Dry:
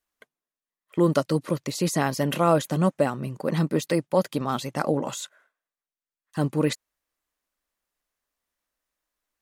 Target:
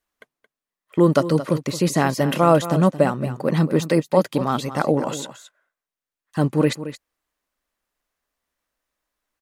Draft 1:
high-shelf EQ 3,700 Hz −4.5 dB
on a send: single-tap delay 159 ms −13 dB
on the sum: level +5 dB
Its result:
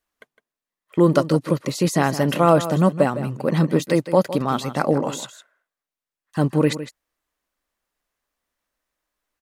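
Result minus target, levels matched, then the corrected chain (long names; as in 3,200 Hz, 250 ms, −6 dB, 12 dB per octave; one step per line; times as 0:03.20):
echo 64 ms early
high-shelf EQ 3,700 Hz −4.5 dB
on a send: single-tap delay 223 ms −13 dB
on the sum: level +5 dB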